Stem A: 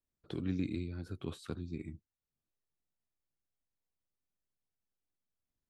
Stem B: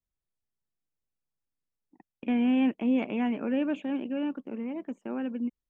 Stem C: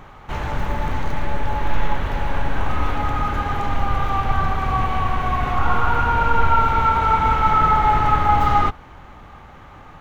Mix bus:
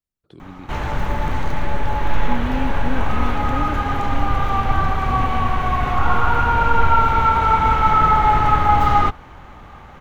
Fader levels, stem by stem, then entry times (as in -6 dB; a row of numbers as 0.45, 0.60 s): -4.5, -2.0, +1.5 dB; 0.00, 0.00, 0.40 s